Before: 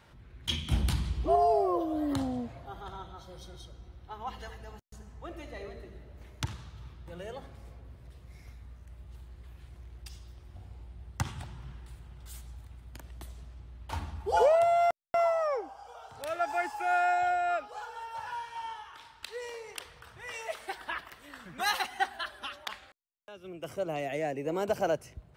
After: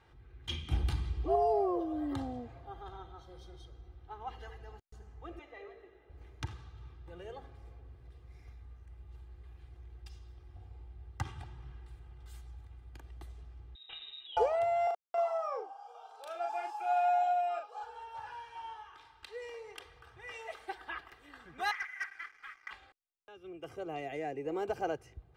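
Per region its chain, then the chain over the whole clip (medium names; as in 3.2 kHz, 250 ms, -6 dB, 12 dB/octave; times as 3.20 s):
5.39–6.10 s: three-band isolator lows -18 dB, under 360 Hz, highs -13 dB, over 4.9 kHz + band-stop 4.4 kHz, Q 5.4
13.75–14.37 s: compression 5:1, threshold -35 dBFS + distance through air 150 m + frequency inversion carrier 3.8 kHz
14.87–17.83 s: high-pass 480 Hz 24 dB/octave + peaking EQ 1.9 kHz -14 dB 0.34 oct + doubling 38 ms -4 dB
21.71–22.71 s: comb filter that takes the minimum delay 0.9 ms + Butterworth band-pass 1.8 kHz, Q 2.7 + waveshaping leveller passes 3
whole clip: low-pass 3 kHz 6 dB/octave; comb 2.5 ms, depth 58%; trim -5.5 dB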